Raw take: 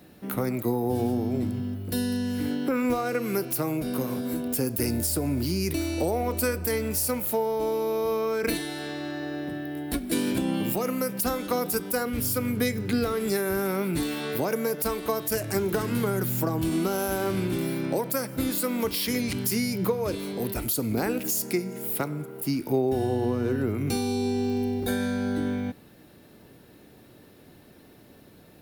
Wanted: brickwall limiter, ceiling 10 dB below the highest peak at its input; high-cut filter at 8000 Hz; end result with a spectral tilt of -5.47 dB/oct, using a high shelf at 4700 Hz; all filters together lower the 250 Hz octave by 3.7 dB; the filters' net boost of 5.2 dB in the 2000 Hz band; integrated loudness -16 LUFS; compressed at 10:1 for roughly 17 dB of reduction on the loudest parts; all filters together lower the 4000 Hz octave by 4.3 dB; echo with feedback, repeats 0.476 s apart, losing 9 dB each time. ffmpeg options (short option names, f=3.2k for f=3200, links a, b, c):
-af "lowpass=8k,equalizer=f=250:t=o:g=-4.5,equalizer=f=2k:t=o:g=9,equalizer=f=4k:t=o:g=-3,highshelf=f=4.7k:g=-9,acompressor=threshold=-40dB:ratio=10,alimiter=level_in=11.5dB:limit=-24dB:level=0:latency=1,volume=-11.5dB,aecho=1:1:476|952|1428|1904:0.355|0.124|0.0435|0.0152,volume=28.5dB"